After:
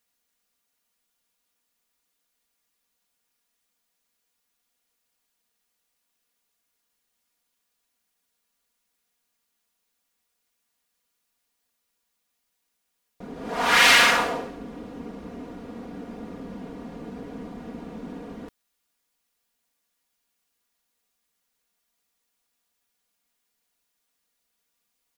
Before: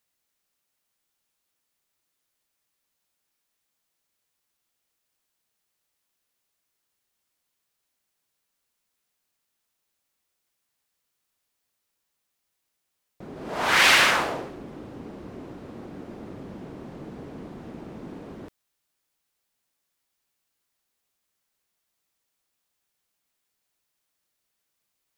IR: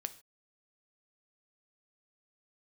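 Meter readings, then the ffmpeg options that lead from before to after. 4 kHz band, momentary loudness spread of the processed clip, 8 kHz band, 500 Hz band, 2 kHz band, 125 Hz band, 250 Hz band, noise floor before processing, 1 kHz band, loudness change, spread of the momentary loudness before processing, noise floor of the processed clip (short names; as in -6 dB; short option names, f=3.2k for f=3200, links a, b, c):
+2.0 dB, 19 LU, +2.0 dB, +1.5 dB, +1.5 dB, -1.5 dB, +2.5 dB, -79 dBFS, +2.0 dB, +1.5 dB, 20 LU, -78 dBFS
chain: -af "aecho=1:1:4.2:0.72"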